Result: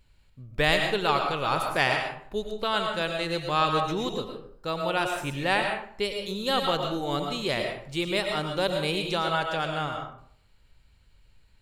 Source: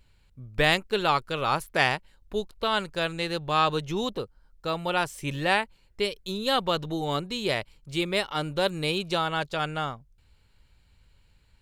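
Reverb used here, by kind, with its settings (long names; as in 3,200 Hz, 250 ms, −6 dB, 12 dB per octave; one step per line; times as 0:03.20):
comb and all-pass reverb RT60 0.59 s, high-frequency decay 0.6×, pre-delay 70 ms, DRR 3 dB
level −1.5 dB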